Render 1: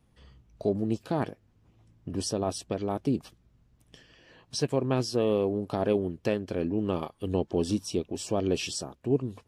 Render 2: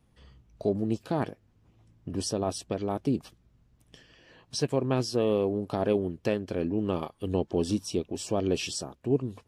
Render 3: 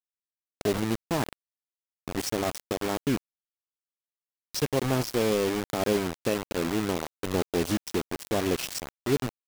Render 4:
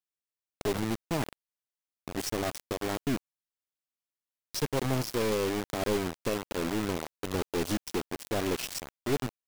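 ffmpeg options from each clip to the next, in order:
-af anull
-af "acrusher=bits=4:mix=0:aa=0.000001"
-af "aeval=exprs='(tanh(7.94*val(0)+0.55)-tanh(0.55))/7.94':c=same"

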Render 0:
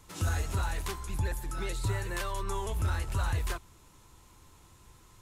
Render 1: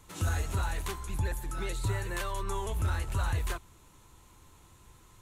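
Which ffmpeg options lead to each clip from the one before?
-af "equalizer=f=5.1k:w=5.6:g=-5.5"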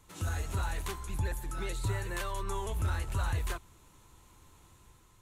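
-af "dynaudnorm=f=180:g=5:m=3dB,volume=-4.5dB"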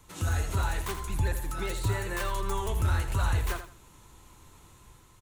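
-filter_complex "[0:a]acrossover=split=260|2300[a][b][c];[c]aeval=exprs='(mod(66.8*val(0)+1,2)-1)/66.8':c=same[d];[a][b][d]amix=inputs=3:normalize=0,aecho=1:1:82|164|246:0.316|0.0696|0.0153,volume=4.5dB"

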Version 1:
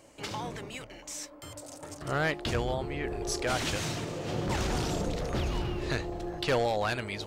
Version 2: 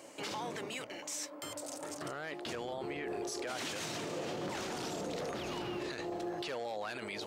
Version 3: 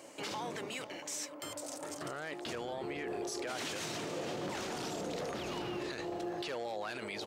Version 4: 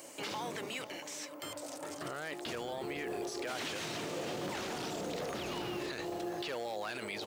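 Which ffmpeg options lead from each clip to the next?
-af "highpass=230,acompressor=threshold=-46dB:ratio=1.5,alimiter=level_in=11dB:limit=-24dB:level=0:latency=1:release=22,volume=-11dB,volume=4.5dB"
-af "aecho=1:1:500:0.15"
-filter_complex "[0:a]acrossover=split=4200[a][b];[b]acompressor=threshold=-58dB:ratio=4:attack=1:release=60[c];[a][c]amix=inputs=2:normalize=0,aemphasis=mode=production:type=50kf,acrusher=bits=7:mode=log:mix=0:aa=0.000001"

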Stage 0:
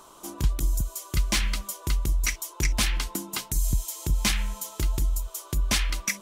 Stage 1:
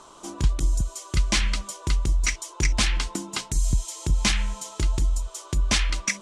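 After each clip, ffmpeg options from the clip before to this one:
-af "lowpass=f=8.6k:w=0.5412,lowpass=f=8.6k:w=1.3066,volume=2.5dB"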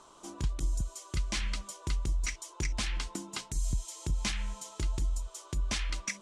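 -af "alimiter=limit=-14dB:level=0:latency=1:release=187,volume=-8dB"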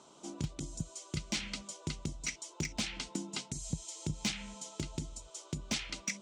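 -af "highpass=120,equalizer=f=160:t=q:w=4:g=7,equalizer=f=240:t=q:w=4:g=5,equalizer=f=1.1k:t=q:w=4:g=-9,equalizer=f=1.7k:t=q:w=4:g=-7,lowpass=f=8.7k:w=0.5412,lowpass=f=8.7k:w=1.3066,volume=25dB,asoftclip=hard,volume=-25dB"

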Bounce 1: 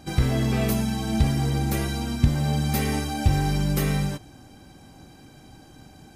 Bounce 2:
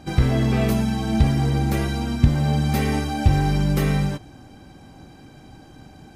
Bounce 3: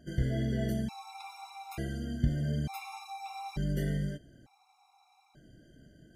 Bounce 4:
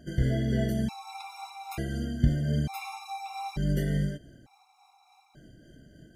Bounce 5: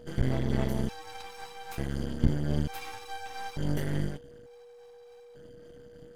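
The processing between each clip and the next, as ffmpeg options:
-af "highshelf=f=5.4k:g=-9.5,volume=3.5dB"
-af "flanger=delay=4.7:depth=1.4:regen=-64:speed=1.9:shape=sinusoidal,afftfilt=real='re*gt(sin(2*PI*0.56*pts/sr)*(1-2*mod(floor(b*sr/1024/700),2)),0)':imag='im*gt(sin(2*PI*0.56*pts/sr)*(1-2*mod(floor(b*sr/1024/700),2)),0)':win_size=1024:overlap=0.75,volume=-7.5dB"
-af "tremolo=f=3.5:d=0.29,volume=5.5dB"
-af "aeval=exprs='max(val(0),0)':c=same,aeval=exprs='val(0)+0.00282*sin(2*PI*480*n/s)':c=same,volume=2dB"

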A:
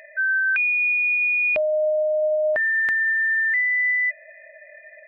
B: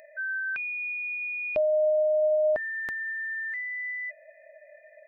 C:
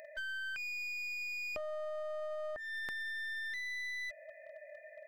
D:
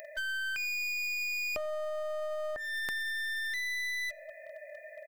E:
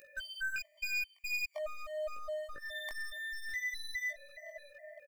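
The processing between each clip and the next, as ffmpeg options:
-af "equalizer=f=2.1k:w=0.79:g=-13"
-af "acompressor=threshold=-36dB:ratio=16,aeval=exprs='clip(val(0),-1,0.00668)':c=same"
-filter_complex "[0:a]crystalizer=i=1.5:c=0,asplit=2[a][b];[b]adelay=93,lowpass=f=2k:p=1,volume=-22.5dB,asplit=2[c][d];[d]adelay=93,lowpass=f=2k:p=1,volume=0.45,asplit=2[e][f];[f]adelay=93,lowpass=f=2k:p=1,volume=0.45[g];[a][c][e][g]amix=inputs=4:normalize=0,volume=4.5dB"
-af "flanger=delay=18:depth=3.7:speed=0.46,aecho=1:1:604:0.141,afftfilt=real='re*gt(sin(2*PI*2.4*pts/sr)*(1-2*mod(floor(b*sr/1024/600),2)),0)':imag='im*gt(sin(2*PI*2.4*pts/sr)*(1-2*mod(floor(b*sr/1024/600),2)),0)':win_size=1024:overlap=0.75,volume=1.5dB"

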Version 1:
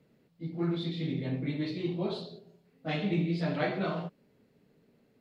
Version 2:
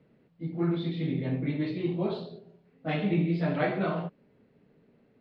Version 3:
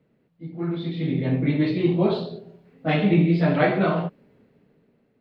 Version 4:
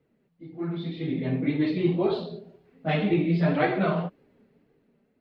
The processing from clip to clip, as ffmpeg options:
-af "lowpass=2.8k,volume=3dB"
-af "dynaudnorm=f=310:g=7:m=12dB,volume=-2.5dB"
-af "flanger=delay=2.4:depth=2.7:regen=-25:speed=1.9:shape=sinusoidal"

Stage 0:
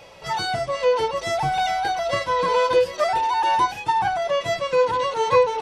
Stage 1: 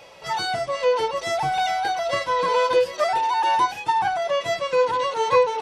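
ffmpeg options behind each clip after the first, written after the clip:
-af "lowshelf=f=170:g=-9"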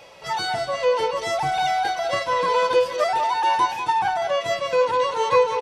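-af "aecho=1:1:195:0.299"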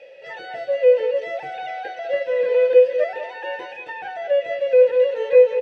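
-filter_complex "[0:a]asplit=3[a][b][c];[a]bandpass=f=530:t=q:w=8,volume=0dB[d];[b]bandpass=f=1.84k:t=q:w=8,volume=-6dB[e];[c]bandpass=f=2.48k:t=q:w=8,volume=-9dB[f];[d][e][f]amix=inputs=3:normalize=0,acrossover=split=2800[g][h];[h]acompressor=threshold=-58dB:ratio=4:attack=1:release=60[i];[g][i]amix=inputs=2:normalize=0,volume=9dB"

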